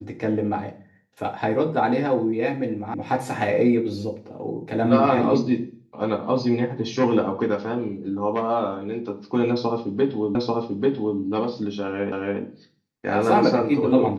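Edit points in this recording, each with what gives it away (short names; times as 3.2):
2.94 sound cut off
10.35 repeat of the last 0.84 s
12.12 repeat of the last 0.28 s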